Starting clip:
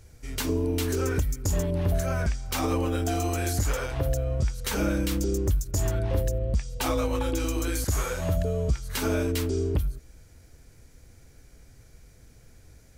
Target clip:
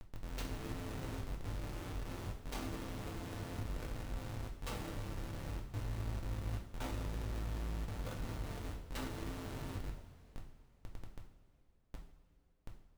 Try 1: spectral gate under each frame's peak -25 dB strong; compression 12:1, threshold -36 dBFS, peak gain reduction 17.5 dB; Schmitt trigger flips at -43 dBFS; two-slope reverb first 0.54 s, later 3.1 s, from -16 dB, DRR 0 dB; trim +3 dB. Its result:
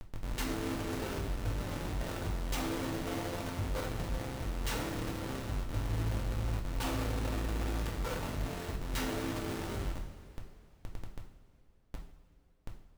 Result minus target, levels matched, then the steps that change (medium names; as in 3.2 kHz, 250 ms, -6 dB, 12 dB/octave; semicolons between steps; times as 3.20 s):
compression: peak gain reduction -6 dB
change: compression 12:1, threshold -42.5 dBFS, peak gain reduction 23.5 dB